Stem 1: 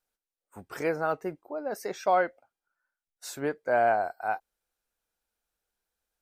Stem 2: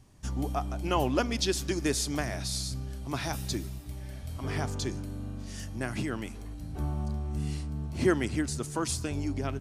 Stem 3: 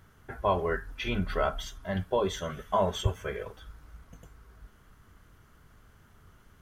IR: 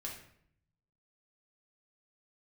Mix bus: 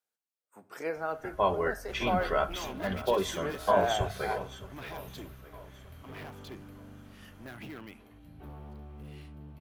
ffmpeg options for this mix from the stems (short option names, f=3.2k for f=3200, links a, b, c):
-filter_complex "[0:a]highpass=160,volume=-7.5dB,asplit=2[a][b];[b]volume=-6.5dB[c];[1:a]highshelf=f=4.2k:t=q:w=1.5:g=-12,asoftclip=type=hard:threshold=-29.5dB,aexciter=amount=6.5:drive=2.7:freq=11k,adelay=1650,volume=-7.5dB[d];[2:a]adelay=950,volume=0.5dB,asplit=2[e][f];[f]volume=-15dB[g];[3:a]atrim=start_sample=2205[h];[c][h]afir=irnorm=-1:irlink=0[i];[g]aecho=0:1:616|1232|1848|2464|3080|3696|4312|4928:1|0.52|0.27|0.141|0.0731|0.038|0.0198|0.0103[j];[a][d][e][i][j]amix=inputs=5:normalize=0,lowshelf=f=150:g=-7,bandreject=f=50:t=h:w=6,bandreject=f=100:t=h:w=6"